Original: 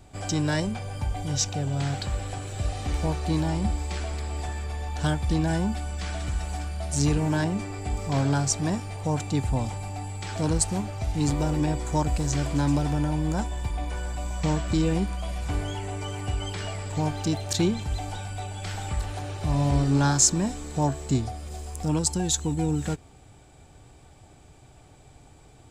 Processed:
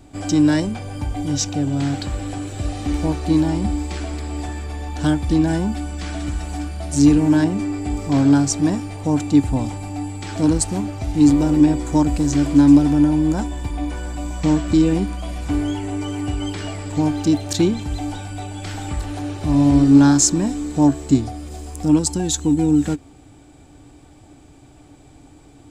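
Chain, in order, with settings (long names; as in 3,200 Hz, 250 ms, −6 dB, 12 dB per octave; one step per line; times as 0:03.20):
parametric band 290 Hz +14 dB 0.34 octaves
level +3 dB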